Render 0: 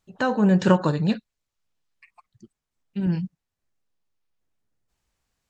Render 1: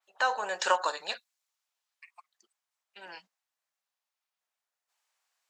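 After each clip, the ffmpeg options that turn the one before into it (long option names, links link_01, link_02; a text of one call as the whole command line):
ffmpeg -i in.wav -af "highpass=frequency=680:width=0.5412,highpass=frequency=680:width=1.3066,adynamicequalizer=threshold=0.00501:dfrequency=4300:dqfactor=0.7:tfrequency=4300:tqfactor=0.7:attack=5:release=100:ratio=0.375:range=3.5:mode=boostabove:tftype=highshelf" out.wav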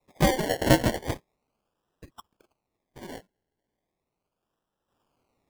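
ffmpeg -i in.wav -filter_complex "[0:a]acrossover=split=660|1200|3400[link_01][link_02][link_03][link_04];[link_04]alimiter=level_in=7dB:limit=-24dB:level=0:latency=1:release=166,volume=-7dB[link_05];[link_01][link_02][link_03][link_05]amix=inputs=4:normalize=0,acrusher=samples=28:mix=1:aa=0.000001:lfo=1:lforange=16.8:lforate=0.37,volume=6dB" out.wav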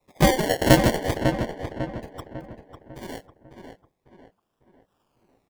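ffmpeg -i in.wav -filter_complex "[0:a]asplit=2[link_01][link_02];[link_02]adelay=549,lowpass=frequency=2400:poles=1,volume=-6.5dB,asplit=2[link_03][link_04];[link_04]adelay=549,lowpass=frequency=2400:poles=1,volume=0.44,asplit=2[link_05][link_06];[link_06]adelay=549,lowpass=frequency=2400:poles=1,volume=0.44,asplit=2[link_07][link_08];[link_08]adelay=549,lowpass=frequency=2400:poles=1,volume=0.44,asplit=2[link_09][link_10];[link_10]adelay=549,lowpass=frequency=2400:poles=1,volume=0.44[link_11];[link_01][link_03][link_05][link_07][link_09][link_11]amix=inputs=6:normalize=0,volume=4dB" out.wav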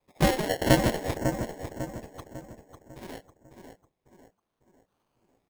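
ffmpeg -i in.wav -af "acrusher=samples=6:mix=1:aa=0.000001,volume=-5dB" out.wav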